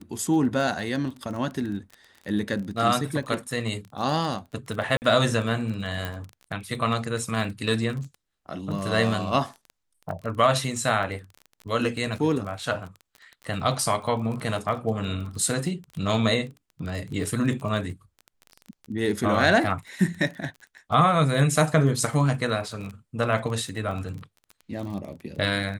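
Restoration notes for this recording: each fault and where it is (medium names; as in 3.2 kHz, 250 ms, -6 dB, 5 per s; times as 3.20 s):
crackle 24 per s -32 dBFS
4.97–5.02 s: dropout 49 ms
6.05 s: pop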